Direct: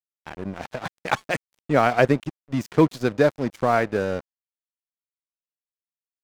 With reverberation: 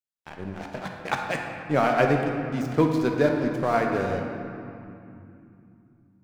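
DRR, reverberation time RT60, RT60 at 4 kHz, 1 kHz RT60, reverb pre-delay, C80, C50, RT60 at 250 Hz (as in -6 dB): 1.5 dB, 2.8 s, 1.7 s, 2.7 s, 13 ms, 4.0 dB, 3.0 dB, 4.2 s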